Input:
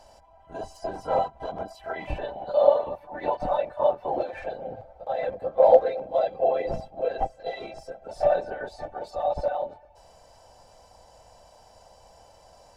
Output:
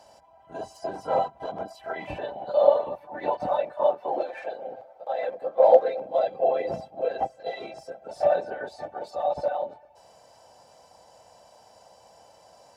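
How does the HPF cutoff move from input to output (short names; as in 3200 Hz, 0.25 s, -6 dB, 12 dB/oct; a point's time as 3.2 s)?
3.4 s 120 Hz
4.37 s 350 Hz
5.32 s 350 Hz
6.27 s 140 Hz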